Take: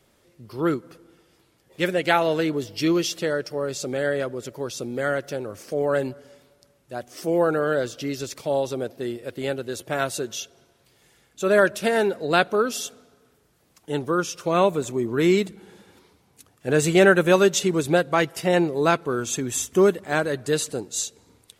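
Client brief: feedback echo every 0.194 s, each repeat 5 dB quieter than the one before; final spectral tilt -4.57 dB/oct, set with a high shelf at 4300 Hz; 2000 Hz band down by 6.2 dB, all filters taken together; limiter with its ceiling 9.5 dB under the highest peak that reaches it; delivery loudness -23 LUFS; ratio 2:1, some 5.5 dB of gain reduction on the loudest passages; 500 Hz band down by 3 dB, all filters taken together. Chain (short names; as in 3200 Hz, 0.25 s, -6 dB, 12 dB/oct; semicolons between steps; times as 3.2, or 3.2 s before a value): bell 500 Hz -3.5 dB; bell 2000 Hz -8 dB; high shelf 4300 Hz -3.5 dB; compressor 2:1, threshold -25 dBFS; limiter -21.5 dBFS; feedback echo 0.194 s, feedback 56%, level -5 dB; gain +8 dB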